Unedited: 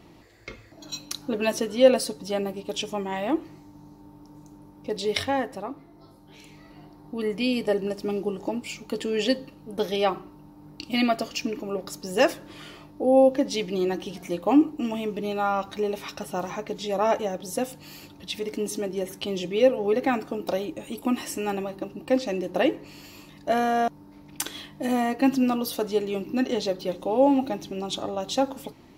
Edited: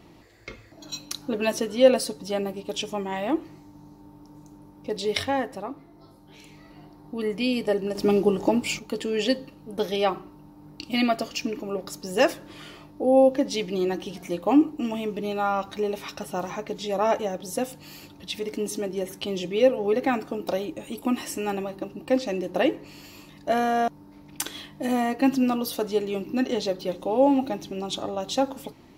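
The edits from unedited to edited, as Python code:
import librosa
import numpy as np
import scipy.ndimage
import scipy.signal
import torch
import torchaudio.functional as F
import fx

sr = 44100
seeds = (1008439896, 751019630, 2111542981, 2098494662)

y = fx.edit(x, sr, fx.clip_gain(start_s=7.95, length_s=0.84, db=7.5), tone=tone)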